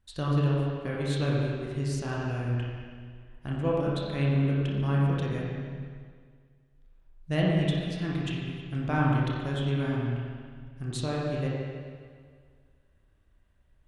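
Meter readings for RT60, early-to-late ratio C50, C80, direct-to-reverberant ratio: 1.9 s, -2.0 dB, 0.0 dB, -5.0 dB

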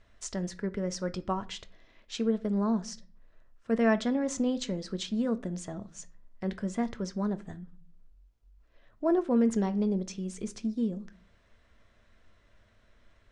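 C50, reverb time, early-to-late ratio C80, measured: 19.5 dB, 0.40 s, 24.5 dB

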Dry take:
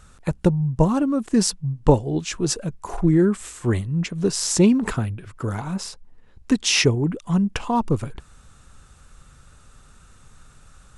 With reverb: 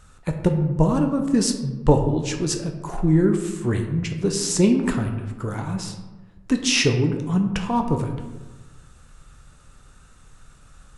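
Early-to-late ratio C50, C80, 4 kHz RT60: 7.5 dB, 9.5 dB, 0.60 s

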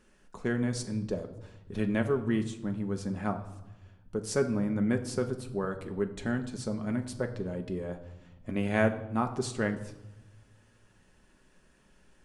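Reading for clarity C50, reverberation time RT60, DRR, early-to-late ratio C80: 12.0 dB, 0.95 s, 5.0 dB, 14.0 dB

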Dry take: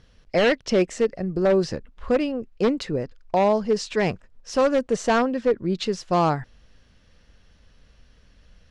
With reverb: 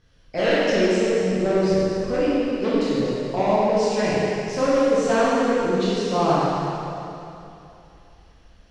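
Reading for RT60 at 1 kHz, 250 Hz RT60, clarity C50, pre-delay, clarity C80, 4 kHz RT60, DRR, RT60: 2.9 s, 3.0 s, -5.0 dB, 7 ms, -3.0 dB, 2.7 s, -9.5 dB, 2.9 s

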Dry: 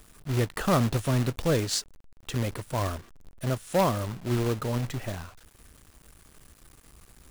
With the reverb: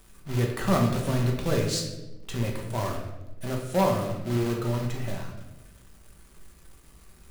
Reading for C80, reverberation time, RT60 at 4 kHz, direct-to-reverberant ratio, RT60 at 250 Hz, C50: 7.0 dB, 1.1 s, 0.70 s, -0.5 dB, 1.4 s, 5.0 dB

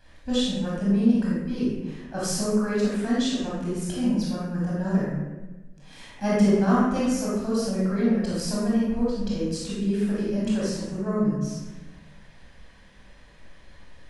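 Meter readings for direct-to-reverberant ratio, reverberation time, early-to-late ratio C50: -7.0 dB, 1.2 s, -2.0 dB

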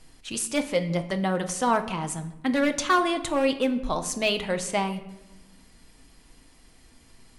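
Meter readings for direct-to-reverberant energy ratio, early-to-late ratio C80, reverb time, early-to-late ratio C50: 6.0 dB, 15.0 dB, 1.0 s, 13.0 dB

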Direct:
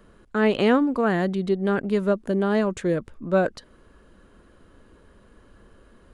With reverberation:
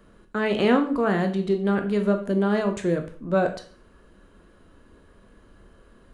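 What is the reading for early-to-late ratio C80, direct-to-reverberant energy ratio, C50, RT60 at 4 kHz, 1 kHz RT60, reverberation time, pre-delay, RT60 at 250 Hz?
16.0 dB, 5.0 dB, 11.0 dB, 0.40 s, 0.45 s, 0.45 s, 7 ms, 0.45 s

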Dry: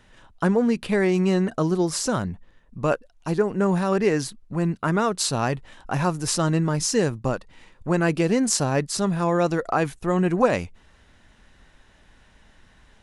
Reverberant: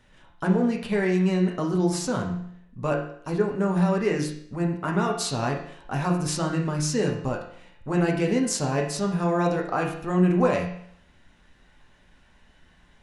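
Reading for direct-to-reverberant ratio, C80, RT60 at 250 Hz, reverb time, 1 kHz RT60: -0.5 dB, 9.5 dB, 0.65 s, 0.65 s, 0.65 s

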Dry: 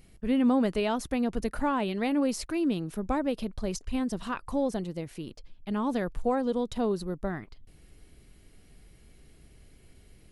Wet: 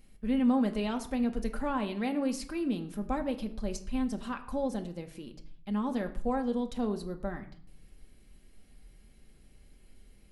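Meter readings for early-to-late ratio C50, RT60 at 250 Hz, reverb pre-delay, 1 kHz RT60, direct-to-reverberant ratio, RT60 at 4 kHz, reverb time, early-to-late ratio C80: 13.5 dB, 0.80 s, 4 ms, 0.60 s, 4.5 dB, 0.40 s, 0.55 s, 16.5 dB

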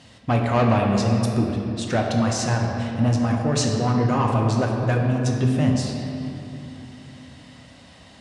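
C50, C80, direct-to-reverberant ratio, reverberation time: 2.0 dB, 3.0 dB, -0.5 dB, 3.0 s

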